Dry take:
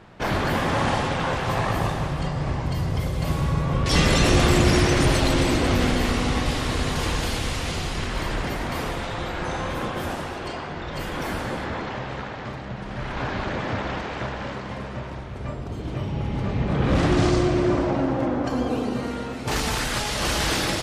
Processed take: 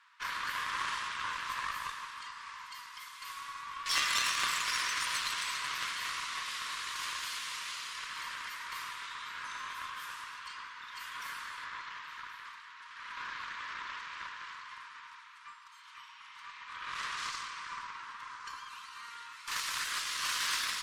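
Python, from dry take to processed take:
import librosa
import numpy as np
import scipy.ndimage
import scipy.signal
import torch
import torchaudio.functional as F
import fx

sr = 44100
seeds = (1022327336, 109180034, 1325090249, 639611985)

y = scipy.signal.sosfilt(scipy.signal.cheby1(8, 1.0, 960.0, 'highpass', fs=sr, output='sos'), x)
y = fx.echo_alternate(y, sr, ms=538, hz=1300.0, feedback_pct=60, wet_db=-13.5)
y = fx.cheby_harmonics(y, sr, harmonics=(3, 5, 8), levels_db=(-13, -37, -35), full_scale_db=-11.5)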